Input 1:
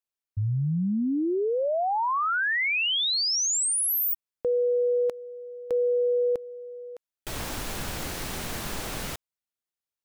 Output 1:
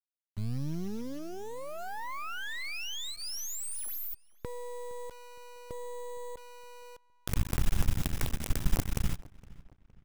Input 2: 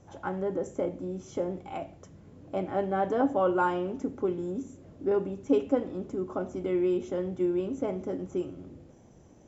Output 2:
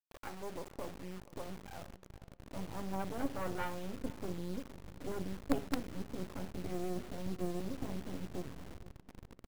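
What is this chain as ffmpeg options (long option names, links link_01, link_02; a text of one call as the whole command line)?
ffmpeg -i in.wav -filter_complex "[0:a]bandreject=frequency=4300:width=10,anlmdn=1.58,asubboost=boost=9.5:cutoff=150,aeval=exprs='0.422*(cos(1*acos(clip(val(0)/0.422,-1,1)))-cos(1*PI/2))+0.133*(cos(2*acos(clip(val(0)/0.422,-1,1)))-cos(2*PI/2))+0.0133*(cos(3*acos(clip(val(0)/0.422,-1,1)))-cos(3*PI/2))+0.00944*(cos(6*acos(clip(val(0)/0.422,-1,1)))-cos(6*PI/2))+0.00841*(cos(8*acos(clip(val(0)/0.422,-1,1)))-cos(8*PI/2))':channel_layout=same,acompressor=mode=upward:threshold=-36dB:ratio=2.5:attack=8.1:release=27:knee=2.83:detection=peak,acrusher=bits=4:dc=4:mix=0:aa=0.000001,asplit=2[link_01][link_02];[link_02]adelay=464,lowpass=frequency=3100:poles=1,volume=-21dB,asplit=2[link_03][link_04];[link_04]adelay=464,lowpass=frequency=3100:poles=1,volume=0.43,asplit=2[link_05][link_06];[link_06]adelay=464,lowpass=frequency=3100:poles=1,volume=0.43[link_07];[link_03][link_05][link_07]amix=inputs=3:normalize=0[link_08];[link_01][link_08]amix=inputs=2:normalize=0,volume=-7.5dB" out.wav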